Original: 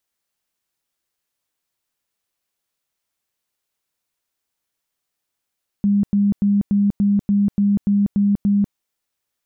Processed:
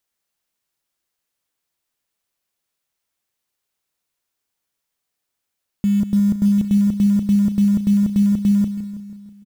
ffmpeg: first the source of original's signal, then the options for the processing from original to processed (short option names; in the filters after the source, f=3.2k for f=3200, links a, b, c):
-f lavfi -i "aevalsrc='0.224*sin(2*PI*202*mod(t,0.29))*lt(mod(t,0.29),39/202)':d=2.9:s=44100"
-filter_complex "[0:a]asplit=2[a][b];[b]aecho=0:1:162|324|486|648|810|972|1134:0.251|0.148|0.0874|0.0516|0.0304|0.018|0.0106[c];[a][c]amix=inputs=2:normalize=0,acrusher=bits=7:mode=log:mix=0:aa=0.000001"